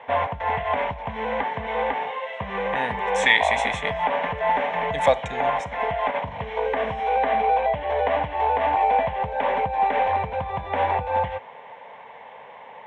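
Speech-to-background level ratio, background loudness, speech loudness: 1.0 dB, −24.5 LKFS, −23.5 LKFS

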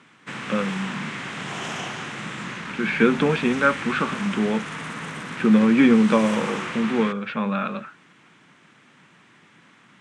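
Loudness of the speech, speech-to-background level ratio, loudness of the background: −21.5 LKFS, 10.0 dB, −31.5 LKFS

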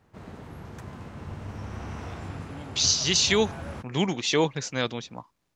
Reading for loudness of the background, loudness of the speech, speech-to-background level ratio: −39.5 LKFS, −24.5 LKFS, 15.0 dB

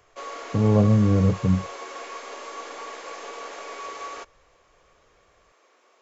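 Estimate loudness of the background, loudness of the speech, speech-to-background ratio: −37.0 LKFS, −21.0 LKFS, 16.0 dB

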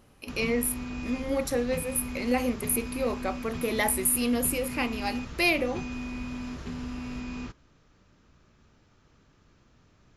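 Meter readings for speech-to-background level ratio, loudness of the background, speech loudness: 8.5 dB, −37.0 LKFS, −28.5 LKFS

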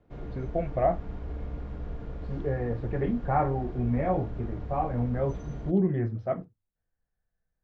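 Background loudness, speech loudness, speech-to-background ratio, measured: −40.0 LKFS, −30.0 LKFS, 10.0 dB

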